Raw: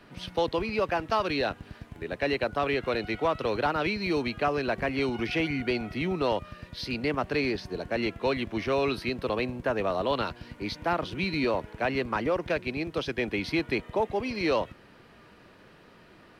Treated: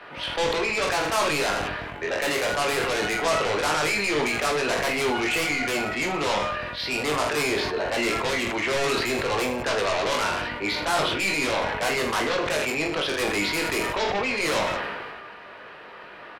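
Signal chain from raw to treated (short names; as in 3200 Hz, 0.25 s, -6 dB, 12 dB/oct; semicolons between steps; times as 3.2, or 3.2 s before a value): three-band isolator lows -18 dB, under 470 Hz, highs -17 dB, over 3400 Hz; in parallel at -11 dB: sine folder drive 18 dB, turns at -16 dBFS; on the sum: reverse bouncing-ball echo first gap 20 ms, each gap 1.3×, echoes 5; sustainer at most 29 dB/s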